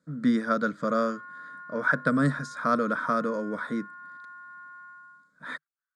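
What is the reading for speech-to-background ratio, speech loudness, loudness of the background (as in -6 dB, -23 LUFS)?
16.5 dB, -27.5 LUFS, -44.0 LUFS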